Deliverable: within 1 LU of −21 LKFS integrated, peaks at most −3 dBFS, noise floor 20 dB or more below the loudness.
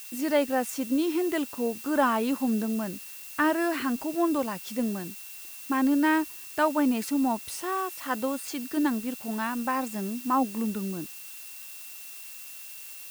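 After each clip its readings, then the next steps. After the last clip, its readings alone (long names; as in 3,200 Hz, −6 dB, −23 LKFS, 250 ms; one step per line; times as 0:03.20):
interfering tone 2,700 Hz; level of the tone −51 dBFS; background noise floor −43 dBFS; target noise floor −48 dBFS; integrated loudness −28.0 LKFS; sample peak −10.5 dBFS; target loudness −21.0 LKFS
→ notch filter 2,700 Hz, Q 30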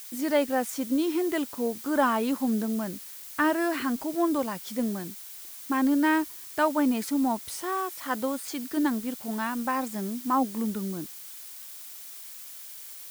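interfering tone none found; background noise floor −43 dBFS; target noise floor −48 dBFS
→ noise reduction from a noise print 6 dB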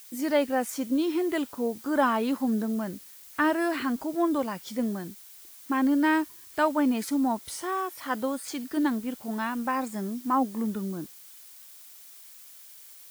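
background noise floor −49 dBFS; integrated loudness −28.0 LKFS; sample peak −11.0 dBFS; target loudness −21.0 LKFS
→ level +7 dB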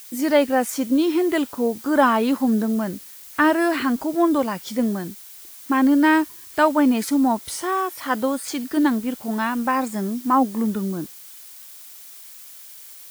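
integrated loudness −21.0 LKFS; sample peak −4.0 dBFS; background noise floor −42 dBFS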